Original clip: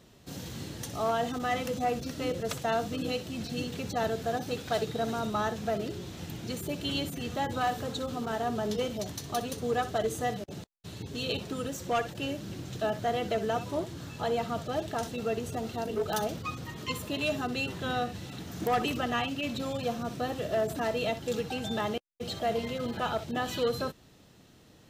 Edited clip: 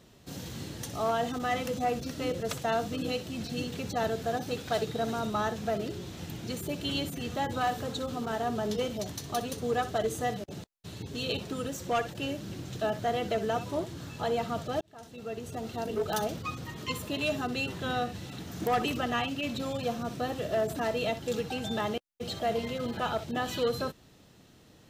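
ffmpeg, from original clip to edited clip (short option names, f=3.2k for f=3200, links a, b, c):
-filter_complex "[0:a]asplit=2[a][b];[a]atrim=end=14.81,asetpts=PTS-STARTPTS,afade=t=out:st=14.806:d=0.004:c=hsin[c];[b]atrim=start=14.81,asetpts=PTS-STARTPTS,afade=t=in:d=1.07[d];[c][d]concat=n=2:v=0:a=1"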